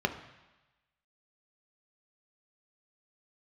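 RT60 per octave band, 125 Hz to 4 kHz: 1.1 s, 1.0 s, 1.0 s, 1.1 s, 1.2 s, 1.2 s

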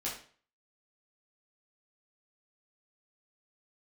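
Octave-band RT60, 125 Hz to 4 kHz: 0.50 s, 0.45 s, 0.45 s, 0.45 s, 0.45 s, 0.40 s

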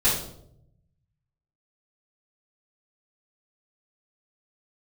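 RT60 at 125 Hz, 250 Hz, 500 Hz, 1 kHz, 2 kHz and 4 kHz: 1.5 s, 1.0 s, 0.85 s, 0.60 s, 0.45 s, 0.50 s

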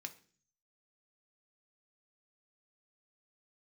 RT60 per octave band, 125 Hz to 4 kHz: 0.80 s, 0.65 s, 0.50 s, 0.40 s, 0.45 s, 0.50 s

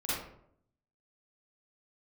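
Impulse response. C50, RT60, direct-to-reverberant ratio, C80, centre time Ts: -4.0 dB, 0.70 s, -11.0 dB, 2.5 dB, 75 ms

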